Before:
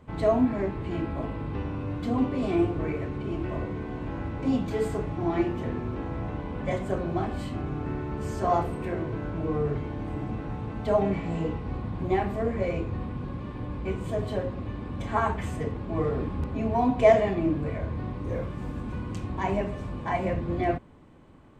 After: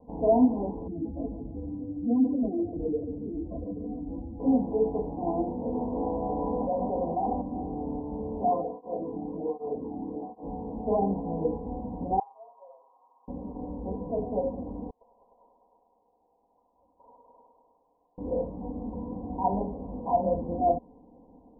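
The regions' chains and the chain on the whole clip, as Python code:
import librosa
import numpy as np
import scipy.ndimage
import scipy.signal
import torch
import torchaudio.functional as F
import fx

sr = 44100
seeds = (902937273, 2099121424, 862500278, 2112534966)

y = fx.chain(x, sr, fx.spec_expand(power=2.2),
    fx.lowpass(hz=1100.0, slope=12),
    fx.echo_thinned(ms=143, feedback_pct=57, hz=230.0, wet_db=-9.5), at=(0.87, 4.4))
y = fx.chain(y, sr, fx.low_shelf(hz=490.0, db=-8.0),
    fx.env_flatten(amount_pct=100), at=(5.74, 7.41))
y = fx.chain(y, sr, fx.doubler(ms=30.0, db=-10.5),
    fx.flanger_cancel(hz=1.3, depth_ms=2.1), at=(8.43, 10.43))
y = fx.chain(y, sr, fx.highpass(hz=1200.0, slope=24),
    fx.air_absorb(metres=350.0),
    fx.comb(ms=7.4, depth=0.71), at=(12.19, 13.28))
y = fx.chain(y, sr, fx.high_shelf(hz=2100.0, db=-12.0),
    fx.echo_heads(ms=101, heads='all three', feedback_pct=47, wet_db=-6.5),
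    fx.freq_invert(carrier_hz=4000), at=(14.9, 18.18))
y = scipy.signal.sosfilt(scipy.signal.butter(16, 950.0, 'lowpass', fs=sr, output='sos'), y)
y = fx.low_shelf(y, sr, hz=230.0, db=-11.0)
y = y + 0.89 * np.pad(y, (int(4.1 * sr / 1000.0), 0))[:len(y)]
y = F.gain(torch.from_numpy(y), 2.0).numpy()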